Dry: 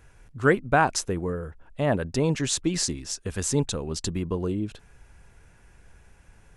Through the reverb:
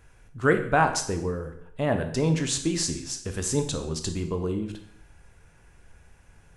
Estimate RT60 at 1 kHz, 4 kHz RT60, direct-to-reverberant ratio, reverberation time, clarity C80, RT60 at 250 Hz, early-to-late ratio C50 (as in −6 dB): 0.70 s, 0.65 s, 6.0 dB, 0.70 s, 12.5 dB, 0.70 s, 9.5 dB